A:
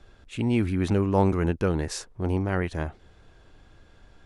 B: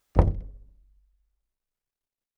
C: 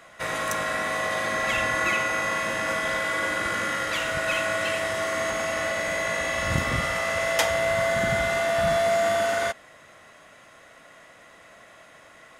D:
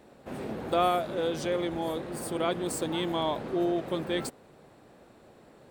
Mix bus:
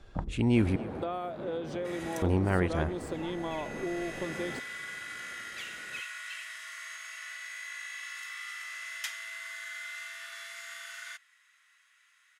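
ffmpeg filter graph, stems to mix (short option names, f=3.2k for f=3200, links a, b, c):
-filter_complex "[0:a]volume=-1dB,asplit=3[a][b][c];[a]atrim=end=0.76,asetpts=PTS-STARTPTS,afade=t=out:st=0.756:d=0.004:c=hsin[d];[b]atrim=start=0.76:end=2.22,asetpts=PTS-STARTPTS,volume=0[e];[c]atrim=start=2.22,asetpts=PTS-STARTPTS,afade=t=in:d=0.004:c=hsin[f];[d][e][f]concat=n=3:v=0:a=1,asplit=3[g][h][i];[h]volume=-18.5dB[j];[1:a]lowpass=2k,asplit=2[k][l];[l]afreqshift=2.8[m];[k][m]amix=inputs=2:normalize=1,volume=1.5dB[n];[2:a]highpass=f=1.5k:w=0.5412,highpass=f=1.5k:w=1.3066,adelay=1650,volume=-11.5dB[o];[3:a]lowpass=f=1.7k:p=1,adelay=300,volume=-1.5dB[p];[i]apad=whole_len=619424[q];[o][q]sidechaincompress=threshold=-42dB:ratio=8:attack=16:release=1020[r];[n][p]amix=inputs=2:normalize=0,acompressor=threshold=-31dB:ratio=12,volume=0dB[s];[j]aecho=0:1:266:1[t];[g][r][s][t]amix=inputs=4:normalize=0"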